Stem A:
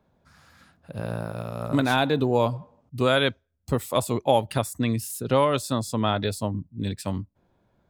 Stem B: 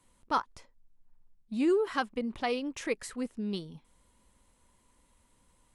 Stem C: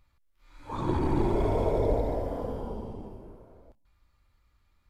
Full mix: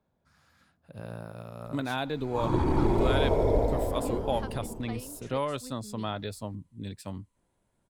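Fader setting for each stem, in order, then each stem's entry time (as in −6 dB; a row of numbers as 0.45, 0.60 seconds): −9.5, −12.5, +1.5 decibels; 0.00, 2.45, 1.65 seconds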